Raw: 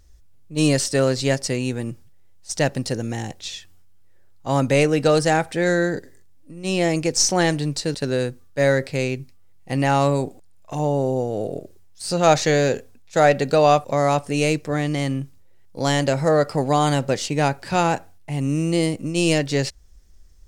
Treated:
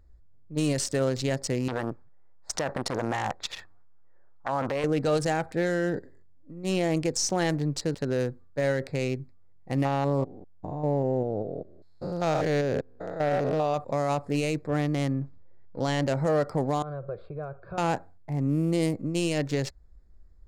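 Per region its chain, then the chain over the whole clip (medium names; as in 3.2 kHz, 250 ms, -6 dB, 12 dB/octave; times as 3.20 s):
1.68–4.84 s: peaking EQ 1.1 kHz +14.5 dB 2.7 oct + compressor with a negative ratio -17 dBFS + transformer saturation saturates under 1.3 kHz
9.85–13.74 s: spectrogram pixelated in time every 200 ms + peaking EQ 8.6 kHz -12 dB 0.81 oct
15.21–16.07 s: companding laws mixed up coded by mu + low-pass 6.3 kHz
16.82–17.78 s: low-pass 1.8 kHz + compression 5:1, threshold -24 dBFS + static phaser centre 1.3 kHz, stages 8
whole clip: local Wiener filter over 15 samples; peak limiter -13.5 dBFS; trim -3.5 dB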